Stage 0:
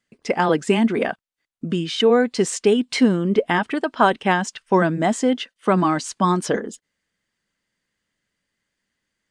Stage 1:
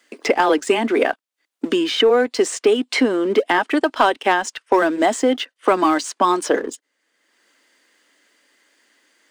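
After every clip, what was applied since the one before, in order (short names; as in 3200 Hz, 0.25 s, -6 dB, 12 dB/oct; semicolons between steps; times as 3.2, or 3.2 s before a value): Chebyshev high-pass 280 Hz, order 4; sample leveller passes 1; three-band squash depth 70%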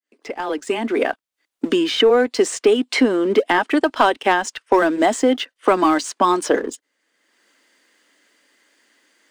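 opening faded in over 1.35 s; low shelf 140 Hz +7 dB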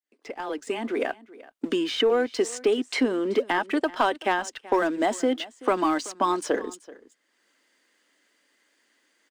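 echo 0.381 s -20 dB; gain -7.5 dB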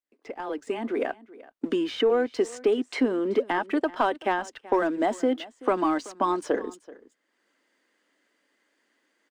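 high shelf 2300 Hz -9 dB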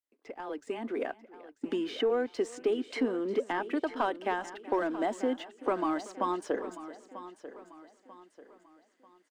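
feedback echo 0.941 s, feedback 39%, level -14 dB; gain -6 dB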